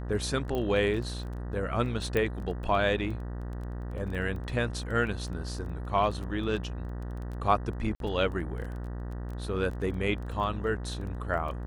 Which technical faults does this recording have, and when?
buzz 60 Hz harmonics 32 -36 dBFS
crackle 14/s -37 dBFS
0.55 pop -21 dBFS
2.17 pop -16 dBFS
7.95–8 gap 52 ms

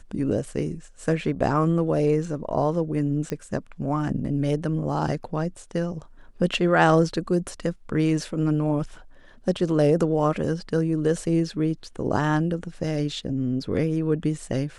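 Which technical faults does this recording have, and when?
3.3 pop -16 dBFS

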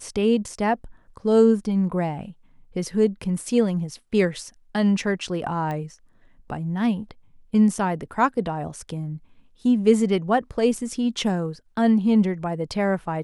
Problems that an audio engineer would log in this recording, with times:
5.71 pop -19 dBFS

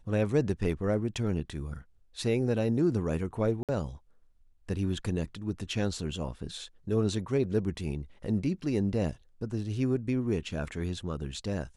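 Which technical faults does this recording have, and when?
3.63–3.69 gap 57 ms

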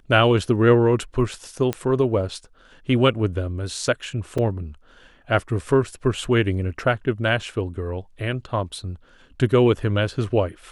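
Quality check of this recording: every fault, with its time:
1.73 pop -11 dBFS
4.38 gap 4.5 ms

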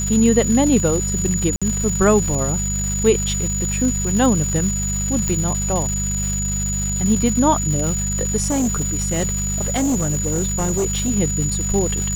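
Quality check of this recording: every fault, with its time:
crackle 510/s -24 dBFS
hum 50 Hz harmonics 4 -24 dBFS
tone 6900 Hz -23 dBFS
1.56–1.62 gap 56 ms
5.28 pop -8 dBFS
8.47–11.11 clipped -15.5 dBFS

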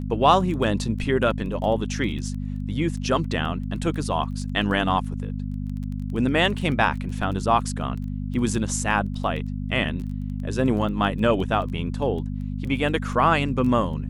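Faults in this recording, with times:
crackle 12/s -31 dBFS
hum 50 Hz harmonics 5 -29 dBFS

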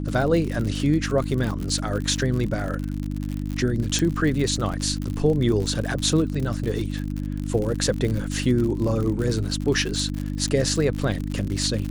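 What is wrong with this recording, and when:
crackle 74/s -27 dBFS
hum 50 Hz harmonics 6 -28 dBFS
3.99 pop

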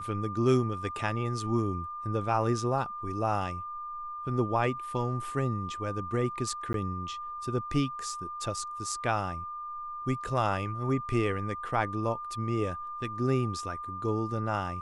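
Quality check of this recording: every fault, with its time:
tone 1200 Hz -36 dBFS
6.73–6.74 gap

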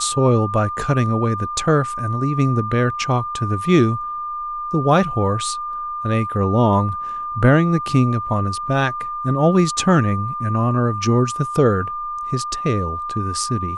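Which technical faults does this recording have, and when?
tone 1200 Hz -24 dBFS

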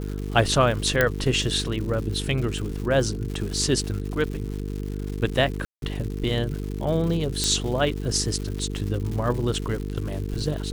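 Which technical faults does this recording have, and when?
buzz 50 Hz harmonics 9 -30 dBFS
crackle 250/s -32 dBFS
1.01 pop -5 dBFS
5.65–5.82 gap 0.172 s
7.44 pop -8 dBFS

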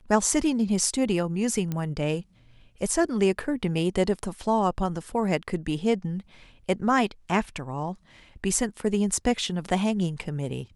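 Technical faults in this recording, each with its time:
1.72 pop -17 dBFS

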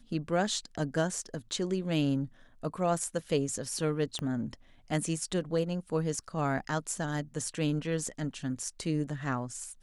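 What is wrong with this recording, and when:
4.19 pop -22 dBFS

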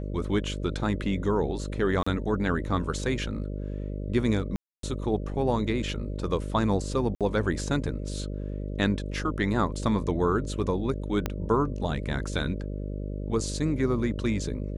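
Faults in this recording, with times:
buzz 50 Hz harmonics 12 -33 dBFS
2.03–2.06 gap 35 ms
4.56–4.83 gap 0.273 s
7.15–7.21 gap 57 ms
11.26 pop -13 dBFS

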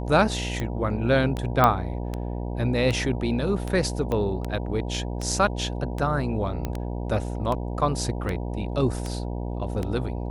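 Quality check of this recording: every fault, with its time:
buzz 60 Hz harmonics 16 -30 dBFS
tick 78 rpm -16 dBFS
1.64 pop -6 dBFS
4.12 pop -16 dBFS
6.65 pop -15 dBFS

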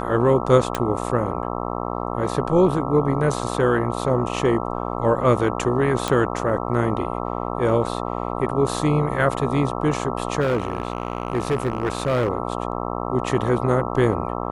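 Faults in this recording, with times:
buzz 60 Hz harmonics 22 -27 dBFS
0.75 pop -8 dBFS
6.08 pop -8 dBFS
10.4–12.29 clipped -16.5 dBFS

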